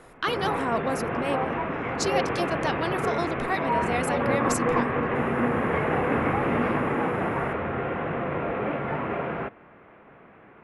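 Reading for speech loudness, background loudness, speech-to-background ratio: -30.5 LUFS, -27.0 LUFS, -3.5 dB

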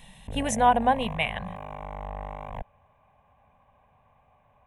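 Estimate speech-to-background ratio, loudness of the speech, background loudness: 14.0 dB, -24.5 LUFS, -38.5 LUFS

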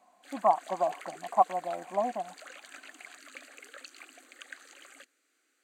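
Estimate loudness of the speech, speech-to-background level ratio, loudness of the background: -30.0 LUFS, 18.5 dB, -48.5 LUFS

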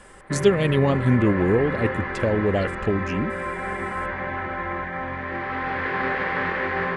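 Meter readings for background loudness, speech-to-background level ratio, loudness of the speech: -28.0 LUFS, 5.5 dB, -22.5 LUFS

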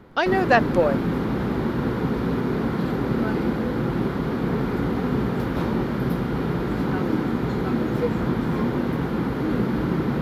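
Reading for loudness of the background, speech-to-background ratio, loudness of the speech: -24.5 LUFS, 3.5 dB, -21.0 LUFS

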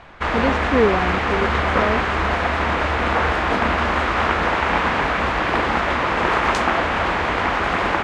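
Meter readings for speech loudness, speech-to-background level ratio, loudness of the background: -23.5 LUFS, -4.0 dB, -19.5 LUFS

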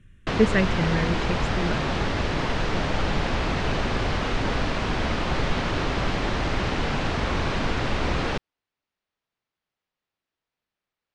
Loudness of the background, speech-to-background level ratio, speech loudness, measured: -26.5 LUFS, 0.5 dB, -26.0 LUFS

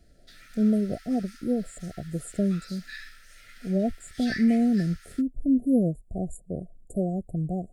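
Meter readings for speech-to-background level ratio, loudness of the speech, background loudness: 16.5 dB, -27.5 LUFS, -44.0 LUFS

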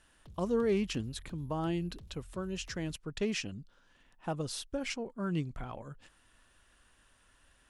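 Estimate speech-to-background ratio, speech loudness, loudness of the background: 19.5 dB, -36.0 LUFS, -55.5 LUFS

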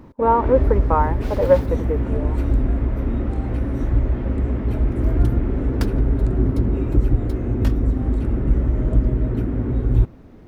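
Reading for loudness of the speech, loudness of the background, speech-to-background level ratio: -20.5 LUFS, -22.0 LUFS, 1.5 dB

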